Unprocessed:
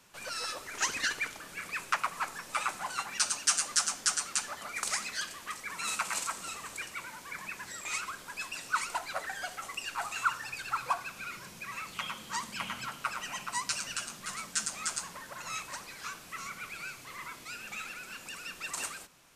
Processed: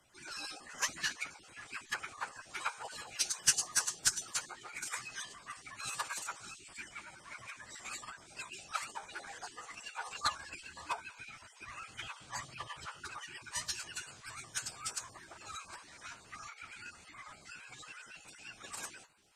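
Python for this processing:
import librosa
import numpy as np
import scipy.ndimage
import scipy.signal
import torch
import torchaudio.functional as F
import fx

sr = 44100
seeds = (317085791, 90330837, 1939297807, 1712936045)

y = fx.spec_dropout(x, sr, seeds[0], share_pct=24)
y = fx.cheby_harmonics(y, sr, harmonics=(3,), levels_db=(-14,), full_scale_db=-15.5)
y = fx.pitch_keep_formants(y, sr, semitones=-8.5)
y = y * 10.0 ** (3.0 / 20.0)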